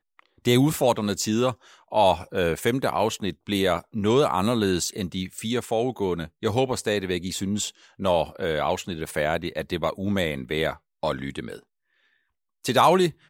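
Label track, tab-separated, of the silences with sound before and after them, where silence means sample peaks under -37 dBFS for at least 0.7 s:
11.580000	12.640000	silence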